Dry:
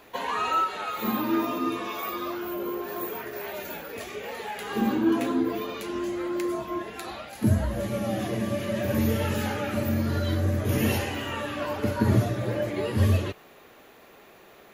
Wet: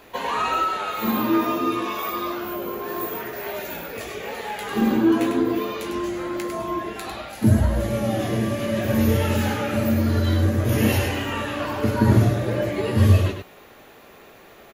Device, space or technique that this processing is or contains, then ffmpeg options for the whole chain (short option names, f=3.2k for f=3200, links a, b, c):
slapback doubling: -filter_complex "[0:a]lowshelf=f=88:g=5,asplit=3[a][b][c];[b]adelay=18,volume=-8.5dB[d];[c]adelay=101,volume=-6dB[e];[a][d][e]amix=inputs=3:normalize=0,volume=3dB"